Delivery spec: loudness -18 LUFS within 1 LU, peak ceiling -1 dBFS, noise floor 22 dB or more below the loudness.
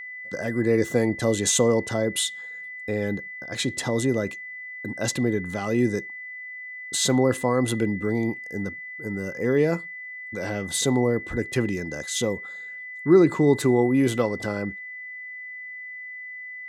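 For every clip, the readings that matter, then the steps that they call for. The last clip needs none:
steady tone 2000 Hz; tone level -35 dBFS; loudness -24.5 LUFS; peak -5.5 dBFS; loudness target -18.0 LUFS
-> notch 2000 Hz, Q 30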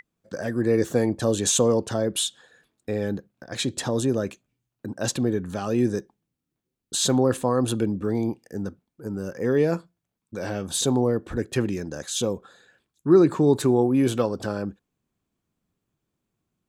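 steady tone none; loudness -24.5 LUFS; peak -5.5 dBFS; loudness target -18.0 LUFS
-> gain +6.5 dB; limiter -1 dBFS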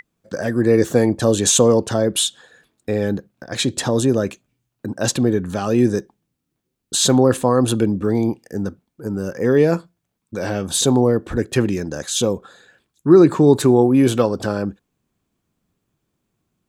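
loudness -18.0 LUFS; peak -1.0 dBFS; noise floor -77 dBFS

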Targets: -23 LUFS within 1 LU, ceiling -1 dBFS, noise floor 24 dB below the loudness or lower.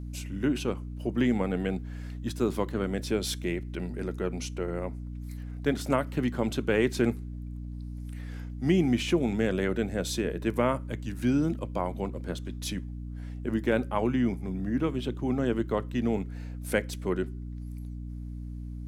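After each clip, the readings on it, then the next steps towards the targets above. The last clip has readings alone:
hum 60 Hz; harmonics up to 300 Hz; hum level -35 dBFS; loudness -30.5 LUFS; peak -10.5 dBFS; loudness target -23.0 LUFS
-> notches 60/120/180/240/300 Hz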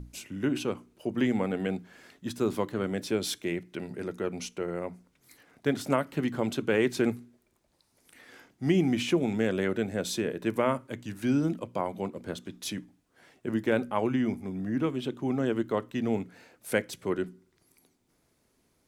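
hum none; loudness -30.5 LUFS; peak -10.5 dBFS; loudness target -23.0 LUFS
-> gain +7.5 dB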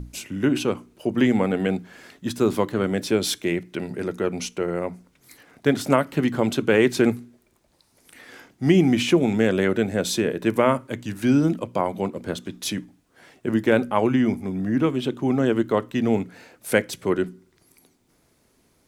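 loudness -23.0 LUFS; peak -3.0 dBFS; noise floor -64 dBFS

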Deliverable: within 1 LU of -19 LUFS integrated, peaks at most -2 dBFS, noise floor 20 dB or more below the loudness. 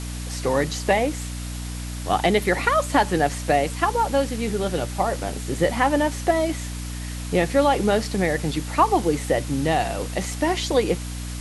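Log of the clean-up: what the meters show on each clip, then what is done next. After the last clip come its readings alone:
hum 60 Hz; harmonics up to 300 Hz; hum level -29 dBFS; noise floor -31 dBFS; noise floor target -43 dBFS; loudness -23.0 LUFS; peak -4.5 dBFS; loudness target -19.0 LUFS
-> de-hum 60 Hz, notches 5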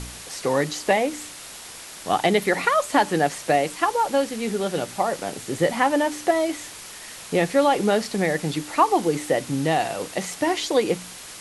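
hum none; noise floor -40 dBFS; noise floor target -43 dBFS
-> noise print and reduce 6 dB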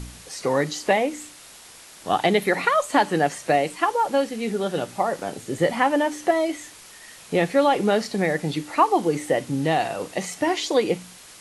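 noise floor -46 dBFS; loudness -23.0 LUFS; peak -5.0 dBFS; loudness target -19.0 LUFS
-> gain +4 dB; limiter -2 dBFS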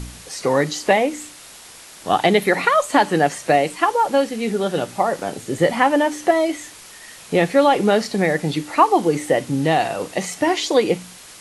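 loudness -19.0 LUFS; peak -2.0 dBFS; noise floor -42 dBFS

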